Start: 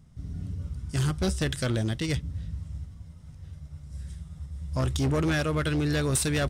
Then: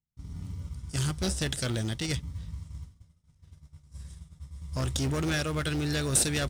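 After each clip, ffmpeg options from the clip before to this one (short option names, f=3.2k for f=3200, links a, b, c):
-filter_complex "[0:a]agate=range=-33dB:threshold=-34dB:ratio=3:detection=peak,equalizer=f=7.6k:w=0.31:g=9,asplit=2[a][b];[b]acrusher=samples=41:mix=1:aa=0.000001,volume=-11.5dB[c];[a][c]amix=inputs=2:normalize=0,volume=-5.5dB"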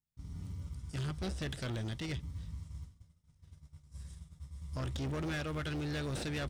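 -filter_complex "[0:a]acrossover=split=4200[a][b];[b]acompressor=threshold=-51dB:ratio=4:attack=1:release=60[c];[a][c]amix=inputs=2:normalize=0,asoftclip=type=tanh:threshold=-29.5dB,volume=-3.5dB"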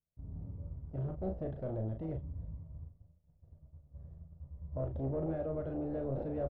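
-filter_complex "[0:a]lowpass=f=610:t=q:w=3.5,lowshelf=f=62:g=6,asplit=2[a][b];[b]adelay=37,volume=-6dB[c];[a][c]amix=inputs=2:normalize=0,volume=-3.5dB"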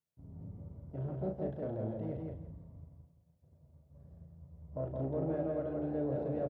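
-af "highpass=120,bandreject=f=1.2k:w=23,aecho=1:1:168|336|504:0.708|0.156|0.0343"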